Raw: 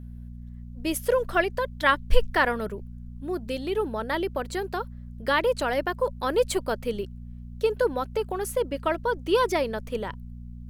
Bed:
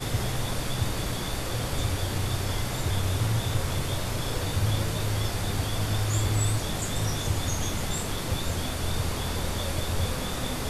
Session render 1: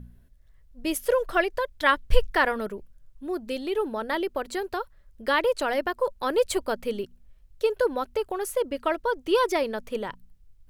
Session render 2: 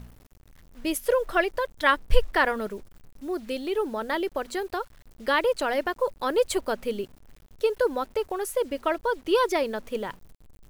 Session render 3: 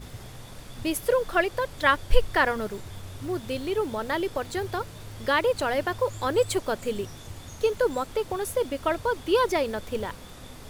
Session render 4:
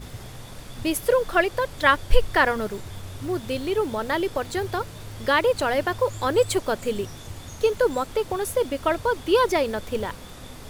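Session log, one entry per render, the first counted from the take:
de-hum 60 Hz, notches 4
bit crusher 9-bit
add bed -14 dB
trim +3 dB; peak limiter -3 dBFS, peak gain reduction 2 dB

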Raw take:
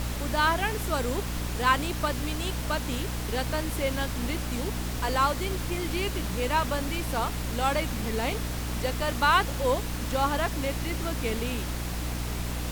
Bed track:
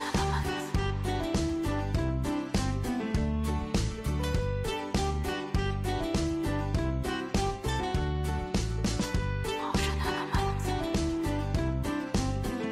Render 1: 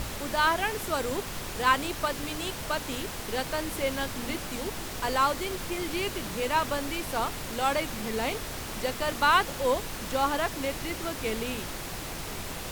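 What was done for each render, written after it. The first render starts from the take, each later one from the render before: hum notches 60/120/180/240/300 Hz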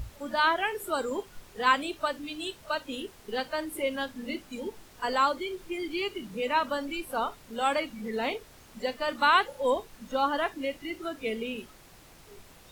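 noise print and reduce 17 dB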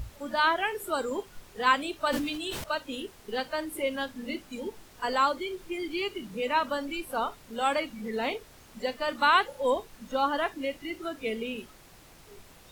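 1.99–2.64 s: decay stretcher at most 31 dB/s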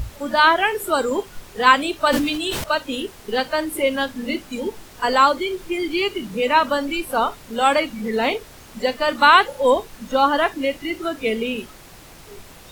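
trim +10 dB; peak limiter -1 dBFS, peak gain reduction 1 dB

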